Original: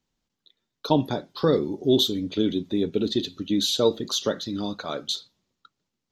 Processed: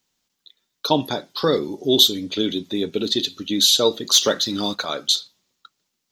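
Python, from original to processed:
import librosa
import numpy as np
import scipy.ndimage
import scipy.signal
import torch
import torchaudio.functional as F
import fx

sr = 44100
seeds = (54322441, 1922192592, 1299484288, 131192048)

y = fx.tilt_eq(x, sr, slope=2.5)
y = fx.leveller(y, sr, passes=1, at=(4.14, 4.85))
y = F.gain(torch.from_numpy(y), 4.5).numpy()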